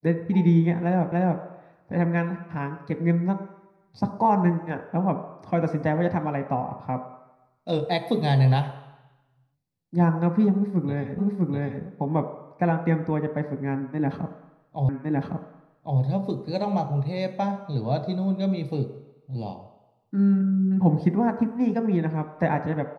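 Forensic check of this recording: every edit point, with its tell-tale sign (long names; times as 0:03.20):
0:01.12: the same again, the last 0.29 s
0:11.18: the same again, the last 0.65 s
0:14.89: the same again, the last 1.11 s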